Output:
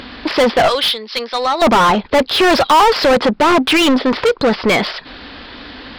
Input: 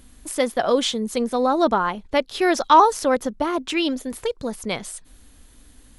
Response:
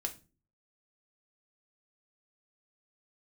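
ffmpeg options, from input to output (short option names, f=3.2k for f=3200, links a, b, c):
-filter_complex "[0:a]asettb=1/sr,asplit=3[a][b][c];[a]atrim=end=0.684[d];[b]atrim=start=0.68:end=1.62,asetpts=PTS-STARTPTS,afade=t=in:d=0.004:c=qsin,afade=t=out:st=0.936:d=0.004:c=qsin,aderivative[e];[c]atrim=start=1.616[f];[d][e]acrossfade=d=0.004:c1=hsin:c2=qsin[g];[g][f]acrossfade=d=0.004:c1=qsin:c2=hsin,aresample=11025,aresample=44100,asplit=2[h][i];[i]highpass=f=720:p=1,volume=37dB,asoftclip=type=tanh:threshold=-2.5dB[j];[h][j]amix=inputs=2:normalize=0,lowpass=f=2.8k:p=1,volume=-6dB,volume=-1dB"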